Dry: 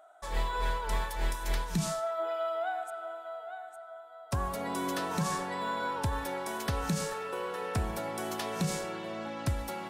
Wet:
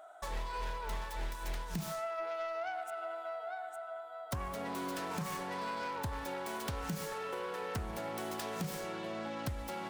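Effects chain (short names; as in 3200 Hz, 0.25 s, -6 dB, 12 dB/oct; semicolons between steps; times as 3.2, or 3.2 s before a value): self-modulated delay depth 0.21 ms; compressor 3:1, threshold -42 dBFS, peak gain reduction 12.5 dB; gain +3.5 dB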